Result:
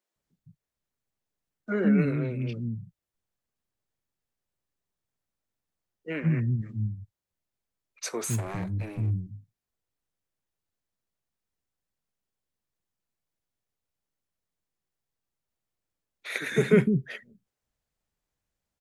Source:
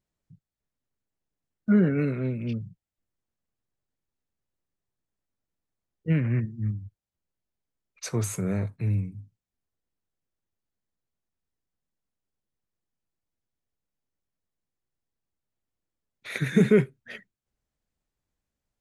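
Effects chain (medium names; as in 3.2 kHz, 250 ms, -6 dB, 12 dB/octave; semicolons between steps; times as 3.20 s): 8.30–9.11 s: comb filter that takes the minimum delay 1.2 ms; bass shelf 140 Hz -4 dB; bands offset in time highs, lows 160 ms, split 280 Hz; trim +1.5 dB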